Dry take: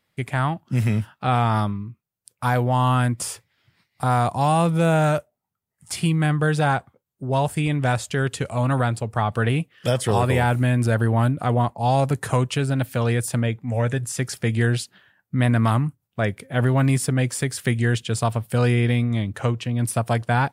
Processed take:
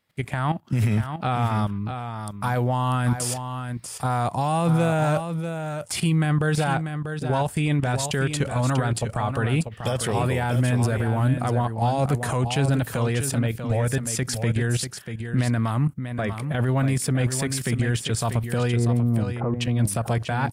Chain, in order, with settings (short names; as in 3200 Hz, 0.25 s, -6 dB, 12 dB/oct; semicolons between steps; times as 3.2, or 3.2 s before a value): 18.76–19.54 LPF 1200 Hz 24 dB/oct; level quantiser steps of 12 dB; limiter -22.5 dBFS, peak gain reduction 11 dB; 2.56–3.31 crackle 220/s -> 47/s -56 dBFS; echo 0.641 s -8 dB; gain +8 dB